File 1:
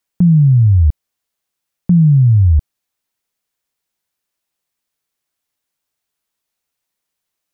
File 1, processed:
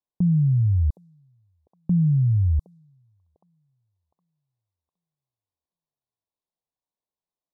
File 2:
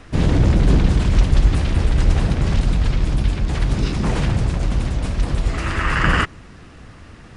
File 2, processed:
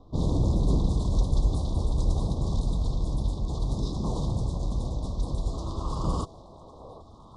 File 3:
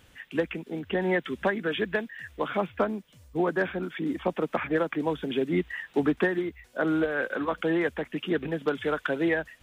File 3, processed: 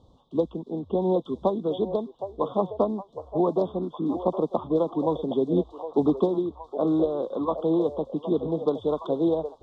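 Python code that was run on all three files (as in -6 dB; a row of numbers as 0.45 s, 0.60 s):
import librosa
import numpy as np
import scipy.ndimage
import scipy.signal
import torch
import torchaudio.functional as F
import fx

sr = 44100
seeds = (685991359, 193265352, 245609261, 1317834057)

y = fx.env_lowpass(x, sr, base_hz=2500.0, full_db=-11.5)
y = scipy.signal.sosfilt(scipy.signal.cheby1(4, 1.0, [1100.0, 3600.0], 'bandstop', fs=sr, output='sos'), y)
y = fx.echo_stepped(y, sr, ms=765, hz=600.0, octaves=0.7, feedback_pct=70, wet_db=-8)
y = y * 10.0 ** (-26 / 20.0) / np.sqrt(np.mean(np.square(y)))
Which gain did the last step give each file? -9.0 dB, -8.5 dB, +3.5 dB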